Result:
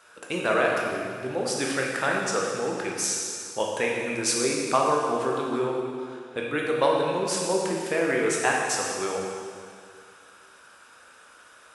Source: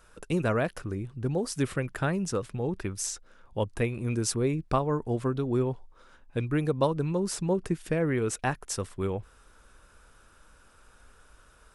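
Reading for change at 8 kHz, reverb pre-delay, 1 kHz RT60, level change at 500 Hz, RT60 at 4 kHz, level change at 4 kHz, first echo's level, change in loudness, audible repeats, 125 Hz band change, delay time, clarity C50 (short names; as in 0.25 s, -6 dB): +7.5 dB, 14 ms, 2.1 s, +5.0 dB, 2.1 s, +9.5 dB, none, +4.0 dB, none, -10.0 dB, none, 0.5 dB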